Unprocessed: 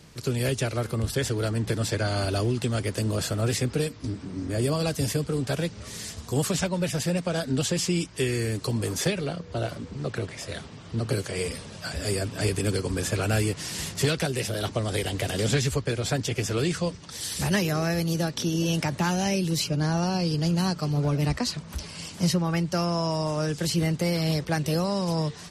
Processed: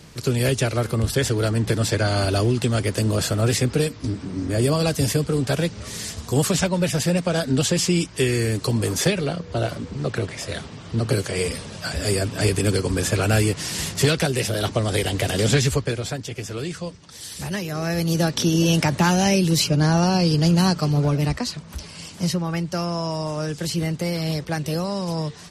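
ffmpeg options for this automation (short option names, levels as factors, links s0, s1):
-af "volume=6.31,afade=t=out:st=15.72:d=0.45:silence=0.354813,afade=t=in:st=17.68:d=0.62:silence=0.298538,afade=t=out:st=20.73:d=0.76:silence=0.473151"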